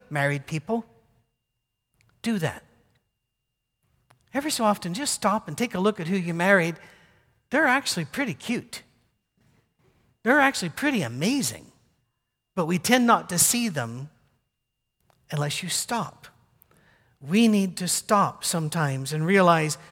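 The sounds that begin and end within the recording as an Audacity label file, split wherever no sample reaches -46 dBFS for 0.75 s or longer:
2.010000	2.600000	sound
4.100000	8.820000	sound
10.250000	11.690000	sound
12.570000	14.080000	sound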